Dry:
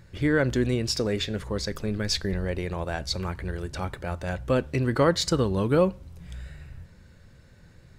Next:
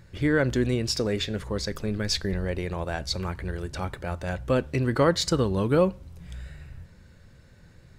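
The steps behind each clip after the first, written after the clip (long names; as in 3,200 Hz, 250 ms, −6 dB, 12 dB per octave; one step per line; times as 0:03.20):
no processing that can be heard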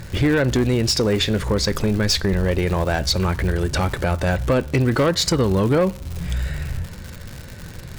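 downward compressor 2.5 to 1, threshold −34 dBFS, peak gain reduction 12 dB
sine wavefolder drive 4 dB, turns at −21 dBFS
surface crackle 200 per second −35 dBFS
level +8.5 dB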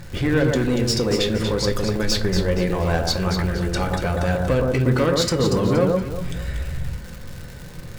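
delay that swaps between a low-pass and a high-pass 118 ms, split 1,400 Hz, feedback 56%, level −2 dB
convolution reverb RT60 0.40 s, pre-delay 4 ms, DRR 6.5 dB
level −4 dB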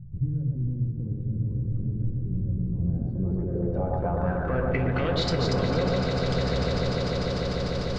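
brickwall limiter −13.5 dBFS, peak gain reduction 6.5 dB
low-pass filter sweep 140 Hz → 4,700 Hz, 0:02.67–0:05.42
echo that builds up and dies away 149 ms, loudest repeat 8, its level −10 dB
level −7.5 dB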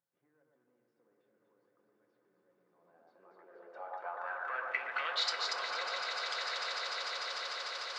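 four-pole ladder high-pass 860 Hz, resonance 20%
level +3 dB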